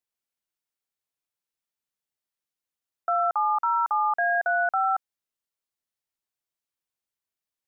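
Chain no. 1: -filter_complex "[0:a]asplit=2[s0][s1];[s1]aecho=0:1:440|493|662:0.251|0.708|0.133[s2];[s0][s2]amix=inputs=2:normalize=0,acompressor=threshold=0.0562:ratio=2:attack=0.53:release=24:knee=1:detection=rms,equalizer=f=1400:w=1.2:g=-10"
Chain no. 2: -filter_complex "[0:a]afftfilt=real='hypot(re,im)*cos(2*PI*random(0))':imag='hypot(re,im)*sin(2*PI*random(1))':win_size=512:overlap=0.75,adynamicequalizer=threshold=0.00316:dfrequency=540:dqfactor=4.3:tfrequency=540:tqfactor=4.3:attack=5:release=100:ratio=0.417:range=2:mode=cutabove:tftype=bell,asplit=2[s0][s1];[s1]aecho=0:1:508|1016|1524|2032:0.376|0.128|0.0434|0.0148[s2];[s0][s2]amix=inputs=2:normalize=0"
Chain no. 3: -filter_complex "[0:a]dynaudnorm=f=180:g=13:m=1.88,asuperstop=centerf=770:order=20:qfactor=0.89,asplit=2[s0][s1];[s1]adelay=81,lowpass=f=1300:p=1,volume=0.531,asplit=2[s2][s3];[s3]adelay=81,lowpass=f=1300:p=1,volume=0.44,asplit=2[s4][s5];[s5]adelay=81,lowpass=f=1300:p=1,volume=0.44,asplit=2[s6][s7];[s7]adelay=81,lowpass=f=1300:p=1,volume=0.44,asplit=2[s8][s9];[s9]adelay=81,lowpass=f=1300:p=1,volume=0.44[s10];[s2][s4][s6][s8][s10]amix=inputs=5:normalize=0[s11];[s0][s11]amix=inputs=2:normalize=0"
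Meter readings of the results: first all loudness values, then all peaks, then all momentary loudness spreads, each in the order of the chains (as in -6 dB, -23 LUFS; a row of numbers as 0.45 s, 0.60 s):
-32.5 LUFS, -31.0 LUFS, -24.0 LUFS; -23.0 dBFS, -17.0 dBFS, -15.5 dBFS; 6 LU, 18 LU, 9 LU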